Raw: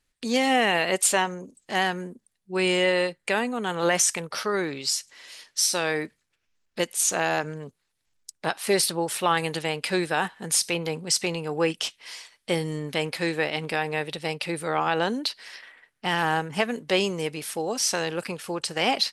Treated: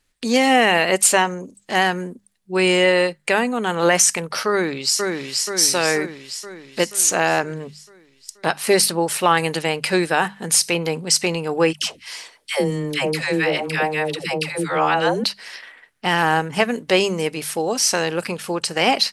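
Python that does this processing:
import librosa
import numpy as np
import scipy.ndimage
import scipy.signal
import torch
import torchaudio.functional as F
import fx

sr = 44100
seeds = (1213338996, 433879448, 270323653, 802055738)

y = fx.echo_throw(x, sr, start_s=4.51, length_s=0.96, ms=480, feedback_pct=60, wet_db=-3.0)
y = fx.dispersion(y, sr, late='lows', ms=124.0, hz=630.0, at=(11.73, 15.24))
y = fx.hum_notches(y, sr, base_hz=50, count=4)
y = fx.dynamic_eq(y, sr, hz=3500.0, q=6.4, threshold_db=-48.0, ratio=4.0, max_db=-6)
y = y * librosa.db_to_amplitude(6.5)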